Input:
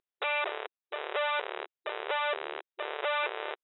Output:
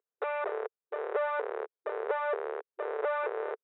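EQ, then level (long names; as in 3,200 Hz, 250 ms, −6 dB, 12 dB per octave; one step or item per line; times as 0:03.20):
high-pass with resonance 440 Hz, resonance Q 4.9
high shelf with overshoot 2,200 Hz −12 dB, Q 1.5
−5.5 dB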